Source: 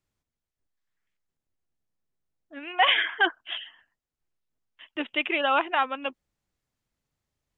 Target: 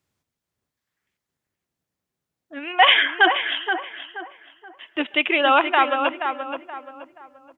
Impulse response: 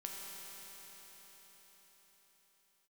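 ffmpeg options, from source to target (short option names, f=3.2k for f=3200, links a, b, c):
-filter_complex "[0:a]highpass=83,asplit=2[a][b];[b]adelay=477,lowpass=f=2k:p=1,volume=-6dB,asplit=2[c][d];[d]adelay=477,lowpass=f=2k:p=1,volume=0.36,asplit=2[e][f];[f]adelay=477,lowpass=f=2k:p=1,volume=0.36,asplit=2[g][h];[h]adelay=477,lowpass=f=2k:p=1,volume=0.36[i];[a][c][e][g][i]amix=inputs=5:normalize=0,asplit=2[j][k];[1:a]atrim=start_sample=2205,atrim=end_sample=6615[l];[k][l]afir=irnorm=-1:irlink=0,volume=-13dB[m];[j][m]amix=inputs=2:normalize=0,volume=5.5dB"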